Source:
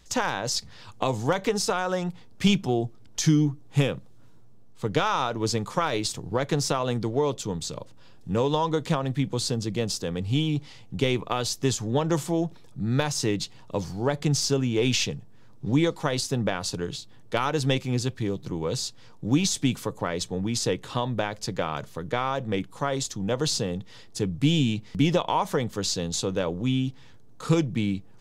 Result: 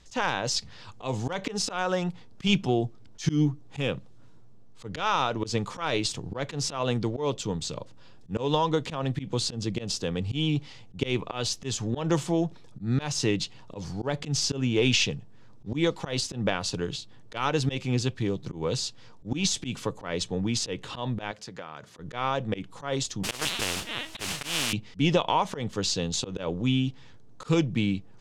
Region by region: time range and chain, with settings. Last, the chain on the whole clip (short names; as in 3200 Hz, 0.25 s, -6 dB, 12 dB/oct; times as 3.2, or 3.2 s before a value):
21.31–21.99 HPF 160 Hz 6 dB/oct + bell 1600 Hz +4 dB 0.83 oct + compressor 2.5:1, threshold -41 dBFS
23.23–24.73 LPC vocoder at 8 kHz pitch kept + modulation noise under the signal 17 dB + spectral compressor 4:1
whole clip: LPF 7900 Hz 12 dB/oct; dynamic EQ 2800 Hz, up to +5 dB, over -49 dBFS, Q 2.8; auto swell 0.123 s